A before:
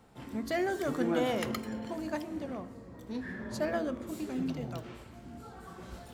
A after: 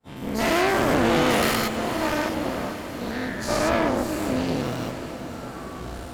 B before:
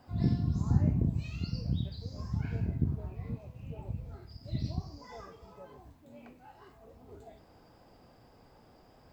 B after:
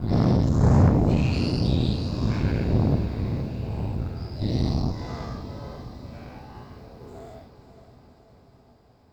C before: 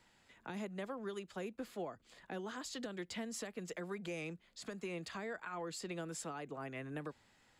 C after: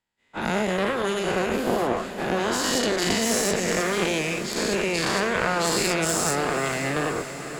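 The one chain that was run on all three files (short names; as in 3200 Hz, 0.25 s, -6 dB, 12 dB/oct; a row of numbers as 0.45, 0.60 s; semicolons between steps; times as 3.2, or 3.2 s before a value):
spectral dilation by 0.24 s; expander -44 dBFS; added harmonics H 8 -14 dB, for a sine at -10 dBFS; on a send: diffused feedback echo 0.528 s, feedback 64%, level -11 dB; on the sum: match loudness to -24 LUFS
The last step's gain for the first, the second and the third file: +2.5, +1.5, +12.0 dB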